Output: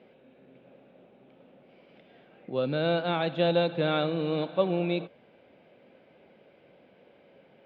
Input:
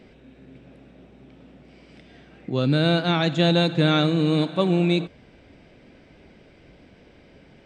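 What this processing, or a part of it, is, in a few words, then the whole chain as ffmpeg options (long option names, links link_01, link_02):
kitchen radio: -af "highpass=200,equalizer=frequency=290:width_type=q:width=4:gain=-5,equalizer=frequency=540:width_type=q:width=4:gain=7,equalizer=frequency=810:width_type=q:width=4:gain=3,equalizer=frequency=1900:width_type=q:width=4:gain=-4,lowpass=frequency=3500:width=0.5412,lowpass=frequency=3500:width=1.3066,volume=-6dB"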